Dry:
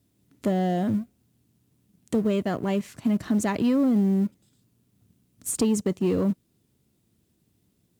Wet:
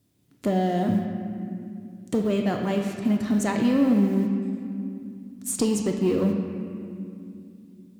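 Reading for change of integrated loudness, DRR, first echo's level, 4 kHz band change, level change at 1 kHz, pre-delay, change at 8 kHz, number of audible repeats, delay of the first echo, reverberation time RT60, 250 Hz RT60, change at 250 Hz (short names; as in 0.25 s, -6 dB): 0.0 dB, 2.0 dB, none, +2.5 dB, +2.0 dB, 3 ms, +0.5 dB, none, none, 2.6 s, 4.2 s, +1.5 dB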